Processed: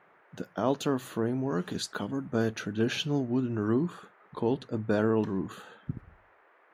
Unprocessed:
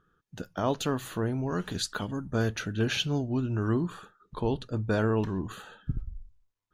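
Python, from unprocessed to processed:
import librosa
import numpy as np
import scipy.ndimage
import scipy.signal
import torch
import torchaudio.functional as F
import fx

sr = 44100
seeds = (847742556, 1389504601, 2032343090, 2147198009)

y = scipy.signal.sosfilt(scipy.signal.butter(2, 180.0, 'highpass', fs=sr, output='sos'), x)
y = fx.tilt_shelf(y, sr, db=3.5, hz=720.0)
y = fx.dmg_noise_band(y, sr, seeds[0], low_hz=350.0, high_hz=1900.0, level_db=-62.0)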